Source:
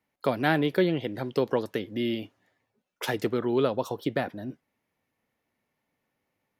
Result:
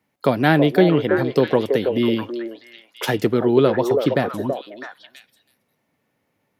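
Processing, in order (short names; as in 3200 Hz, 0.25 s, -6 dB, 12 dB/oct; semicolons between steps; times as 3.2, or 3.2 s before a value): HPF 99 Hz; low shelf 230 Hz +7 dB; on a send: delay with a stepping band-pass 0.327 s, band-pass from 510 Hz, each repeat 1.4 oct, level -2 dB; on the sum: gain +6.5 dB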